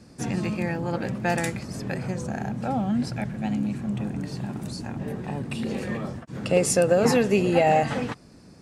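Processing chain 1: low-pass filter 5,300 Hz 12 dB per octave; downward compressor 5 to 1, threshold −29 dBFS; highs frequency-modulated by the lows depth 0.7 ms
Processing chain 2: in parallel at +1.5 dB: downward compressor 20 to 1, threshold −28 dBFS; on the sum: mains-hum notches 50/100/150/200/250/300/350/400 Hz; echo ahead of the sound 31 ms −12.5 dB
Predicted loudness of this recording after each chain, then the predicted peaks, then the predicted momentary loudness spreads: −33.5, −23.0 LKFS; −17.0, −5.0 dBFS; 4, 9 LU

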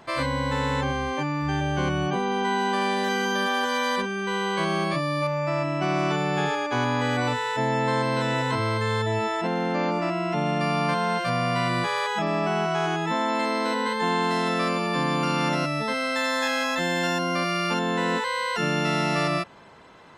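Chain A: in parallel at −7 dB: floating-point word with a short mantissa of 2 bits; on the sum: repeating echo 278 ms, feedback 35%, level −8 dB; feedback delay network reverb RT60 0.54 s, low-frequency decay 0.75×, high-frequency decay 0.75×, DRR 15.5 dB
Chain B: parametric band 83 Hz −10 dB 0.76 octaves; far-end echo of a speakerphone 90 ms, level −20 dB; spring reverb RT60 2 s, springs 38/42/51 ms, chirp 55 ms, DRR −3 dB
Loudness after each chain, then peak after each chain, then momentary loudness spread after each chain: −21.0, −20.5 LKFS; −8.0, −7.0 dBFS; 2, 4 LU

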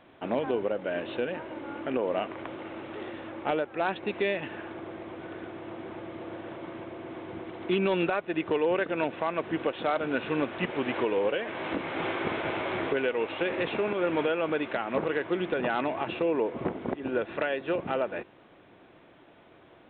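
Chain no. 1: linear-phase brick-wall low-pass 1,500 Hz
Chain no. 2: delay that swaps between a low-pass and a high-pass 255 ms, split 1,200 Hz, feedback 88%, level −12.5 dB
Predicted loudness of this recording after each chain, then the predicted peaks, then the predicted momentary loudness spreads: −31.5, −30.5 LKFS; −16.5, −14.5 dBFS; 13, 12 LU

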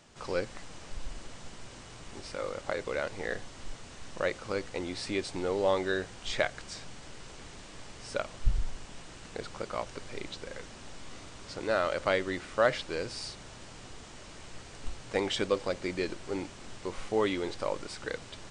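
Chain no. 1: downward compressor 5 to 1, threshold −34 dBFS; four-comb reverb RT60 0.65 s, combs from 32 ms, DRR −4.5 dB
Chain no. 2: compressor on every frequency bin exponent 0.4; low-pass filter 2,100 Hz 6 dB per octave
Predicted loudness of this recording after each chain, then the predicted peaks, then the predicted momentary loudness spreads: −35.5, −27.5 LKFS; −16.5, −7.5 dBFS; 10, 7 LU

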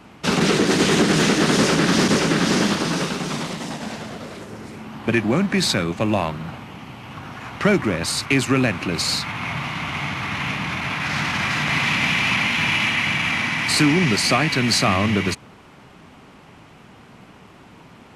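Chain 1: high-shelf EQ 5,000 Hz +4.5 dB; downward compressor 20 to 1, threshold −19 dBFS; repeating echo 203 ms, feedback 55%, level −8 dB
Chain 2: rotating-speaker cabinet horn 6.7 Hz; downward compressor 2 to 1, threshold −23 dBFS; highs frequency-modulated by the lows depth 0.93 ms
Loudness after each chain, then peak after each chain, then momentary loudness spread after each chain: −22.5, −25.5 LKFS; −8.5, −9.5 dBFS; 13, 12 LU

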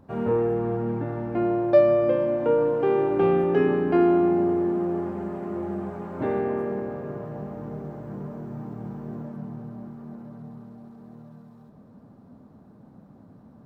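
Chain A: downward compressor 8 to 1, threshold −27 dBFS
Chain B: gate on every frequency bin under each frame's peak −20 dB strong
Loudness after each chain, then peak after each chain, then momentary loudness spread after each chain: −32.5, −24.5 LKFS; −17.0, −8.0 dBFS; 21, 18 LU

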